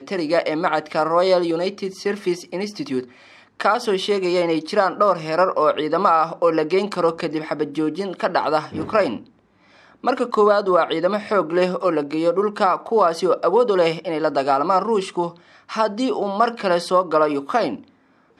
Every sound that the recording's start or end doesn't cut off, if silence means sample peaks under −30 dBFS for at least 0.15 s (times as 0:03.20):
0:03.60–0:09.17
0:10.04–0:15.30
0:15.70–0:17.76